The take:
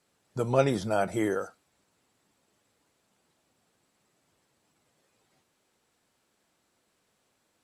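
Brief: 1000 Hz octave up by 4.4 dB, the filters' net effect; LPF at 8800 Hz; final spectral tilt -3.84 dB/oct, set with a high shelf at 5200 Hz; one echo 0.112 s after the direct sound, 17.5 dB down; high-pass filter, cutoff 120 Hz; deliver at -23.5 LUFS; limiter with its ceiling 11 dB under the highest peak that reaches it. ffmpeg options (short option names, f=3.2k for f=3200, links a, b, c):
-af "highpass=120,lowpass=8.8k,equalizer=f=1k:t=o:g=7,highshelf=f=5.2k:g=-6.5,alimiter=limit=-18dB:level=0:latency=1,aecho=1:1:112:0.133,volume=7dB"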